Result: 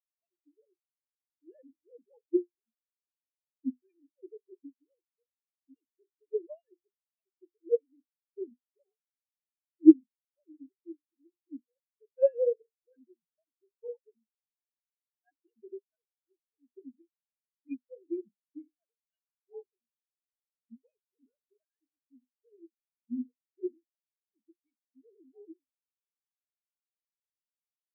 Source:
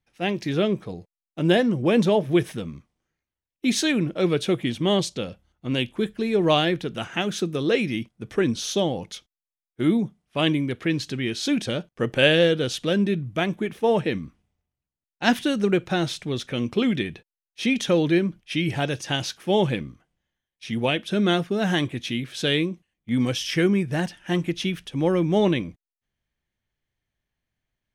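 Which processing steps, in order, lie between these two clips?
sine-wave speech; notches 50/100/150/200/250/300/350/400/450/500 Hz; spectral expander 4:1

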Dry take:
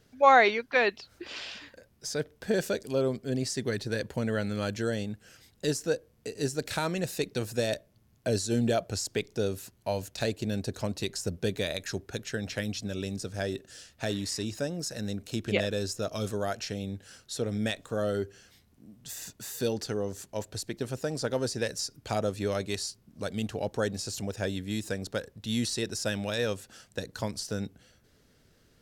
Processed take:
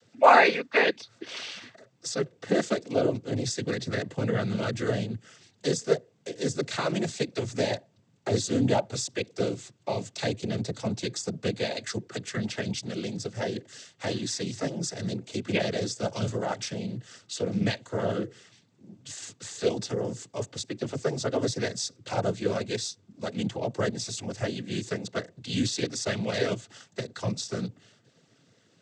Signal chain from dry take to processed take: noise vocoder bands 16; gain +2.5 dB

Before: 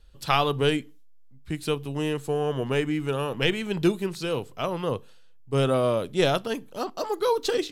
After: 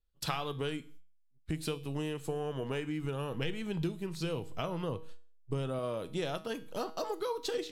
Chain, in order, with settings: gate -44 dBFS, range -28 dB; 3.04–5.79 low shelf 200 Hz +8 dB; compressor 6:1, threshold -34 dBFS, peak gain reduction 19 dB; resonator 160 Hz, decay 0.45 s, harmonics all, mix 60%; gain +7.5 dB

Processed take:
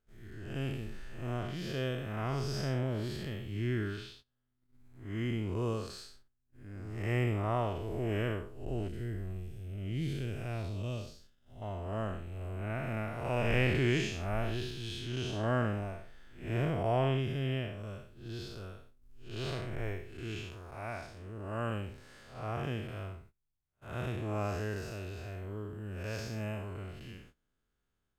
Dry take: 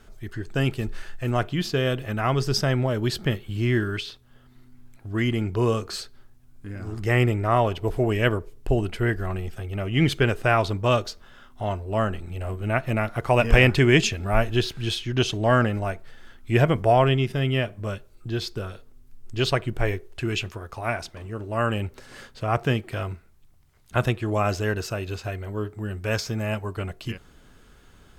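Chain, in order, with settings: time blur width 0.195 s; gate -47 dBFS, range -20 dB; 8.88–11.62 bell 1100 Hz -15 dB 2.2 oct; gain -8.5 dB

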